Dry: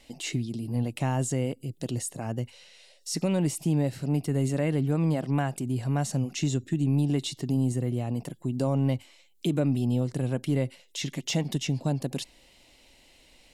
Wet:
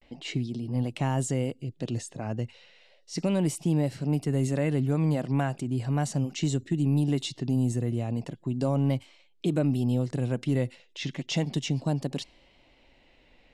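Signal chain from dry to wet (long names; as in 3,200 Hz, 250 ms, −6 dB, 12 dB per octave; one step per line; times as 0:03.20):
low-pass that shuts in the quiet parts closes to 2,400 Hz, open at −21 dBFS
pitch vibrato 0.35 Hz 56 cents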